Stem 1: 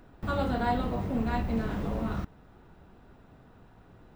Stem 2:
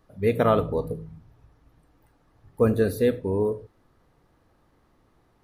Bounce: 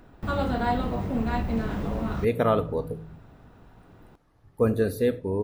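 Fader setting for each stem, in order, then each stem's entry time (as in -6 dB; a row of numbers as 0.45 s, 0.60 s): +2.5 dB, -2.0 dB; 0.00 s, 2.00 s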